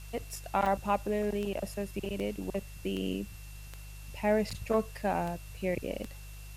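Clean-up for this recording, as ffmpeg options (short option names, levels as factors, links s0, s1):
-af "adeclick=t=4,bandreject=f=50.4:t=h:w=4,bandreject=f=100.8:t=h:w=4,bandreject=f=151.2:t=h:w=4,bandreject=f=2700:w=30,afftdn=nr=30:nf=-46"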